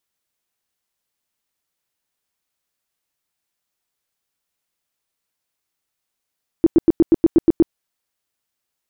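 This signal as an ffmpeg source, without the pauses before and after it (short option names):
-f lavfi -i "aevalsrc='0.447*sin(2*PI*330*mod(t,0.12))*lt(mod(t,0.12),8/330)':d=1.08:s=44100"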